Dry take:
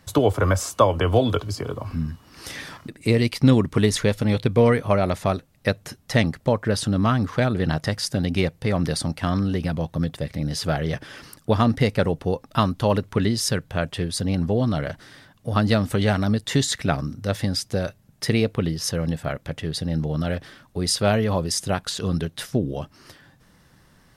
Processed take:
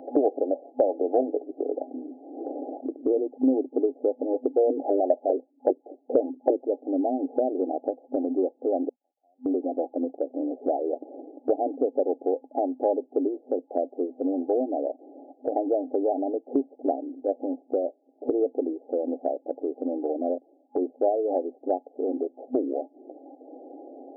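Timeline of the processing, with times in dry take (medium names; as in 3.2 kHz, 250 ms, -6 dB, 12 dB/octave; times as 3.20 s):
4.70–6.66 s: step-sequenced low-pass 10 Hz 260–2100 Hz
8.89–9.46 s: ladder band-pass 4.8 kHz, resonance 75%
20.24–21.16 s: transient shaper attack +1 dB, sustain -12 dB
whole clip: FFT band-pass 250–830 Hz; three bands compressed up and down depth 70%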